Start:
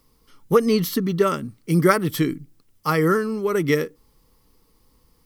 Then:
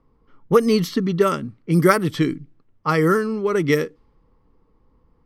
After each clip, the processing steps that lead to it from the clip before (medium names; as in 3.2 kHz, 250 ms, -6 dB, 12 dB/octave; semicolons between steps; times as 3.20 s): level-controlled noise filter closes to 1.3 kHz, open at -14 dBFS; trim +1.5 dB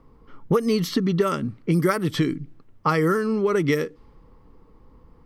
compression 4:1, threshold -28 dBFS, peak gain reduction 16 dB; trim +8 dB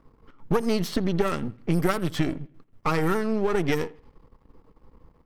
partial rectifier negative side -12 dB; bucket-brigade echo 82 ms, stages 2048, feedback 35%, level -22.5 dB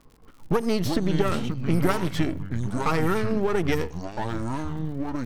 ever faster or slower copies 130 ms, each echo -6 st, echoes 2, each echo -6 dB; crackle 94 per s -43 dBFS